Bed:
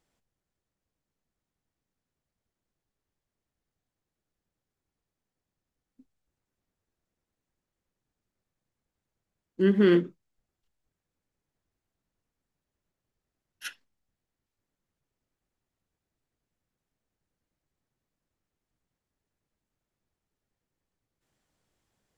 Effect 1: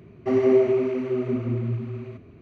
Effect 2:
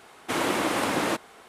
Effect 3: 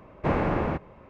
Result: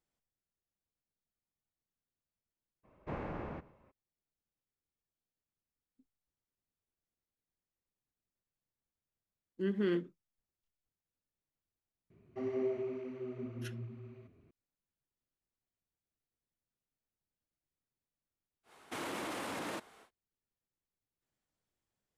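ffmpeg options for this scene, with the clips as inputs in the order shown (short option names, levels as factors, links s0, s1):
-filter_complex "[0:a]volume=0.251[s0];[3:a]asplit=2[s1][s2];[s2]adelay=116.6,volume=0.1,highshelf=f=4000:g=-2.62[s3];[s1][s3]amix=inputs=2:normalize=0[s4];[2:a]alimiter=limit=0.0794:level=0:latency=1:release=13[s5];[s4]atrim=end=1.09,asetpts=PTS-STARTPTS,volume=0.158,afade=t=in:d=0.02,afade=t=out:st=1.07:d=0.02,adelay=2830[s6];[1:a]atrim=end=2.41,asetpts=PTS-STARTPTS,volume=0.141,afade=t=in:d=0.004:c=hsin,afade=t=out:st=2.406:d=0.004:c=hsin,adelay=12100[s7];[s5]atrim=end=1.48,asetpts=PTS-STARTPTS,volume=0.316,afade=t=in:d=0.1,afade=t=out:st=1.38:d=0.1,adelay=18630[s8];[s0][s6][s7][s8]amix=inputs=4:normalize=0"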